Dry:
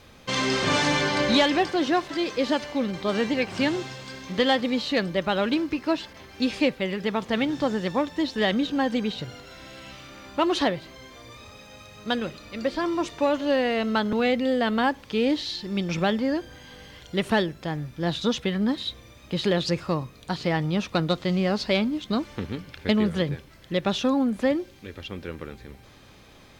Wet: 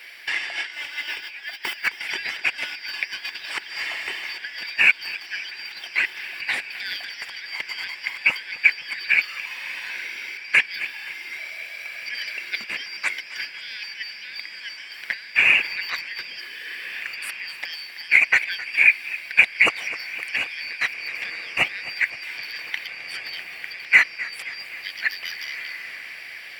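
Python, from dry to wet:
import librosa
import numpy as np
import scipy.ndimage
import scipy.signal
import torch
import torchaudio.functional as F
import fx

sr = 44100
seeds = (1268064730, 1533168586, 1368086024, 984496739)

y = fx.band_shuffle(x, sr, order='4321')
y = fx.hpss(y, sr, part='harmonic', gain_db=-6)
y = fx.dmg_noise_colour(y, sr, seeds[0], colour='white', level_db=-53.0, at=(0.71, 1.87), fade=0.02)
y = fx.tilt_eq(y, sr, slope=4.0)
y = fx.over_compress(y, sr, threshold_db=-25.0, ratio=-0.5)
y = fx.notch(y, sr, hz=6400.0, q=5.6)
y = fx.echo_diffused(y, sr, ms=1725, feedback_pct=69, wet_db=-15.5)
y = np.clip(y, -10.0 ** (-15.0 / 20.0), 10.0 ** (-15.0 / 20.0))
y = fx.high_shelf_res(y, sr, hz=3200.0, db=-12.0, q=3.0)
y = fx.echo_warbled(y, sr, ms=261, feedback_pct=62, rate_hz=2.8, cents=76, wet_db=-17)
y = y * 10.0 ** (5.0 / 20.0)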